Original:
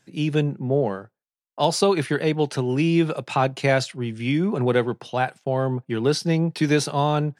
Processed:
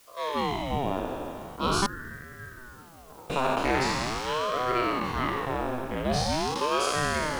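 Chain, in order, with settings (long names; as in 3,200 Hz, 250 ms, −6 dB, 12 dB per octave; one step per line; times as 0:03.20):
peak hold with a decay on every bin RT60 2.85 s
0:01.86–0:03.30: formant resonators in series a
bit-depth reduction 8 bits, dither triangular
ring modulator whose carrier an LFO sweeps 500 Hz, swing 75%, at 0.43 Hz
level −6.5 dB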